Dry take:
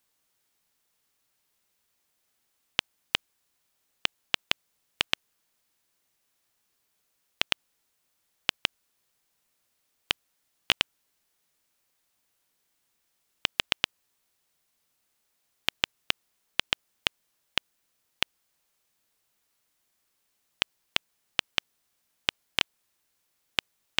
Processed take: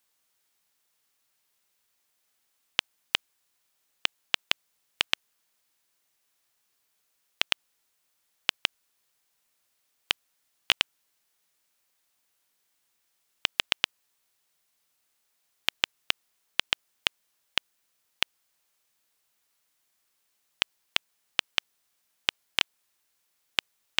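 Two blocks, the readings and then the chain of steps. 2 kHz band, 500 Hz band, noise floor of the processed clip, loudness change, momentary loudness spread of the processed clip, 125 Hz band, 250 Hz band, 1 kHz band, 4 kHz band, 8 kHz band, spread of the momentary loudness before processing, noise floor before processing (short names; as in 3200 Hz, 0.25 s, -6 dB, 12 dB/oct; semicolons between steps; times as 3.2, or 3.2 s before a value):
+0.5 dB, -2.0 dB, -75 dBFS, +1.0 dB, 3 LU, -5.0 dB, -4.0 dB, 0.0 dB, +1.0 dB, +1.0 dB, 3 LU, -76 dBFS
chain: low shelf 480 Hz -6.5 dB; gain +1 dB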